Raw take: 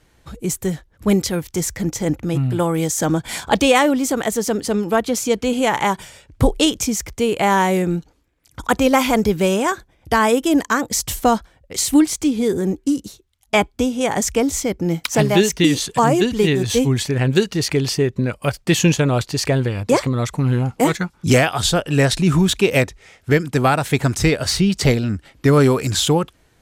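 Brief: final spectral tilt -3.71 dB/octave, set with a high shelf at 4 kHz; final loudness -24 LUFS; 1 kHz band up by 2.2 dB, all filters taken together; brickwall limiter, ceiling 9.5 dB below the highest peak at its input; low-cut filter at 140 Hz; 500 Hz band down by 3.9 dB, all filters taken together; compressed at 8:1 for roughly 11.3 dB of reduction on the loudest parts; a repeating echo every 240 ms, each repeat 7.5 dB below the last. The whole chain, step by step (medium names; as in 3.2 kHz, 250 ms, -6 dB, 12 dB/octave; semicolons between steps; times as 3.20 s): high-pass 140 Hz; peaking EQ 500 Hz -6 dB; peaking EQ 1 kHz +4.5 dB; treble shelf 4 kHz +6 dB; compression 8:1, threshold -22 dBFS; peak limiter -16 dBFS; feedback delay 240 ms, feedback 42%, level -7.5 dB; trim +2.5 dB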